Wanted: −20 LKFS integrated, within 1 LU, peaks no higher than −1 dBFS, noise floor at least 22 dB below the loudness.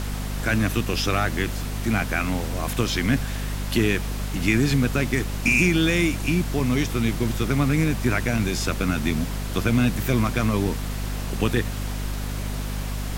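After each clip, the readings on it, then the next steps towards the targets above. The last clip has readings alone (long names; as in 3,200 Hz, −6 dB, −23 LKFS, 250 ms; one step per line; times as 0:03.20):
mains hum 50 Hz; hum harmonics up to 250 Hz; level of the hum −26 dBFS; background noise floor −29 dBFS; target noise floor −46 dBFS; integrated loudness −23.5 LKFS; sample peak −7.5 dBFS; target loudness −20.0 LKFS
→ mains-hum notches 50/100/150/200/250 Hz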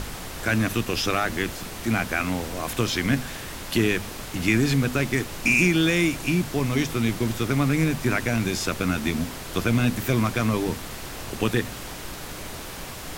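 mains hum none found; background noise floor −37 dBFS; target noise floor −47 dBFS
→ noise reduction from a noise print 10 dB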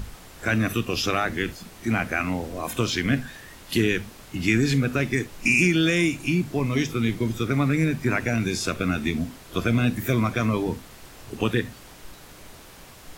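background noise floor −46 dBFS; target noise floor −47 dBFS
→ noise reduction from a noise print 6 dB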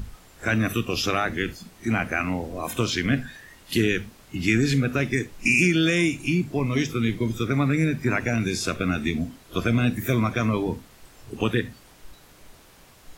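background noise floor −52 dBFS; integrated loudness −24.5 LKFS; sample peak −9.0 dBFS; target loudness −20.0 LKFS
→ level +4.5 dB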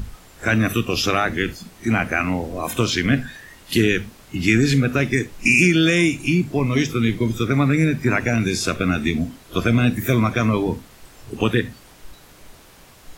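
integrated loudness −20.0 LKFS; sample peak −4.5 dBFS; background noise floor −47 dBFS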